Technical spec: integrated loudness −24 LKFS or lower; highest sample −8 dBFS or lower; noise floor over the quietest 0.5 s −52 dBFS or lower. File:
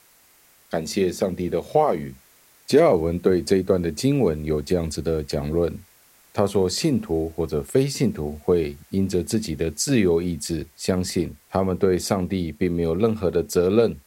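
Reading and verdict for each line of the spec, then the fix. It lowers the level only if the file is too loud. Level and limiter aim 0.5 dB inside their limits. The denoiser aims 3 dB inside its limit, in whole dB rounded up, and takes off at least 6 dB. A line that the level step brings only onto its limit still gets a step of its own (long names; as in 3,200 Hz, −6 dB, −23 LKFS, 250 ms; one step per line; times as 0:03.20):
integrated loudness −23.0 LKFS: out of spec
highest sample −6.0 dBFS: out of spec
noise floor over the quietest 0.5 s −56 dBFS: in spec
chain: level −1.5 dB
brickwall limiter −8.5 dBFS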